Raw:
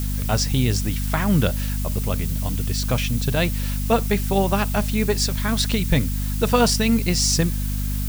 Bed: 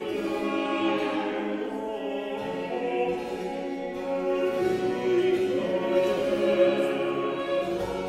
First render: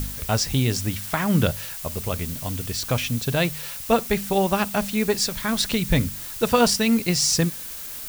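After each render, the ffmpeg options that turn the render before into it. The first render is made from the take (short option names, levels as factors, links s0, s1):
-af "bandreject=f=50:t=h:w=4,bandreject=f=100:t=h:w=4,bandreject=f=150:t=h:w=4,bandreject=f=200:t=h:w=4,bandreject=f=250:t=h:w=4"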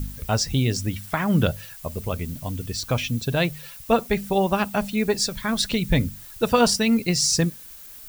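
-af "afftdn=nr=10:nf=-35"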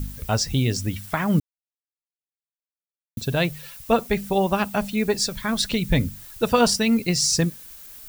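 -filter_complex "[0:a]asplit=3[s0][s1][s2];[s0]atrim=end=1.4,asetpts=PTS-STARTPTS,afade=t=out:st=1.396:d=0.004:c=hsin[s3];[s1]atrim=start=1.4:end=3.17,asetpts=PTS-STARTPTS,volume=0[s4];[s2]atrim=start=3.17,asetpts=PTS-STARTPTS,afade=t=in:d=0.004:c=hsin[s5];[s3][s4][s5]concat=n=3:v=0:a=1"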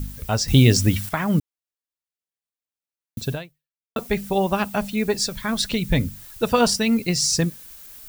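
-filter_complex "[0:a]asplit=4[s0][s1][s2][s3];[s0]atrim=end=0.482[s4];[s1]atrim=start=0.478:end=1.092,asetpts=PTS-STARTPTS,volume=2.51[s5];[s2]atrim=start=1.088:end=3.96,asetpts=PTS-STARTPTS,afade=t=out:st=2.232:d=0.64:c=exp[s6];[s3]atrim=start=3.96,asetpts=PTS-STARTPTS,afade=t=in:d=0.004:c=hsin[s7];[s4][s5]acrossfade=d=0.004:c1=hsin:c2=hsin[s8];[s6][s7]concat=n=2:v=0:a=1[s9];[s8][s9]acrossfade=d=0.004:c1=hsin:c2=hsin"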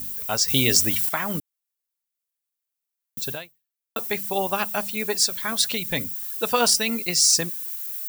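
-af "highpass=f=630:p=1,highshelf=f=8400:g=12"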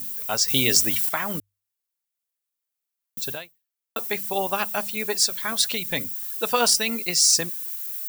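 -af "lowshelf=f=200:g=-6,bandreject=f=50:t=h:w=6,bandreject=f=100:t=h:w=6"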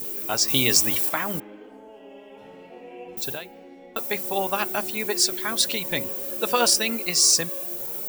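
-filter_complex "[1:a]volume=0.211[s0];[0:a][s0]amix=inputs=2:normalize=0"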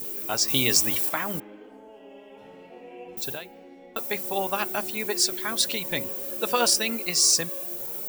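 -af "volume=0.794"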